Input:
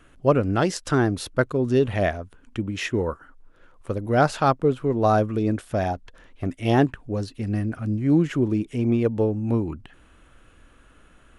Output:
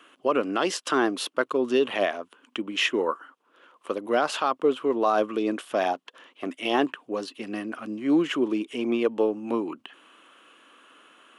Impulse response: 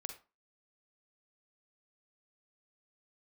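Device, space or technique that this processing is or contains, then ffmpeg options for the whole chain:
laptop speaker: -af "highpass=f=270:w=0.5412,highpass=f=270:w=1.3066,equalizer=f=1.1k:t=o:w=0.44:g=8,equalizer=f=3k:t=o:w=0.56:g=10,alimiter=limit=-12dB:level=0:latency=1:release=49"

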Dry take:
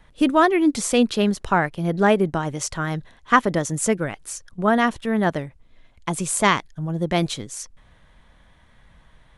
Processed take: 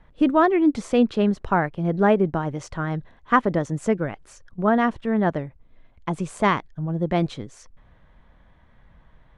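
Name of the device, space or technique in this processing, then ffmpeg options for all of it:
through cloth: -af "lowpass=8.1k,highshelf=f=3.1k:g=-17"

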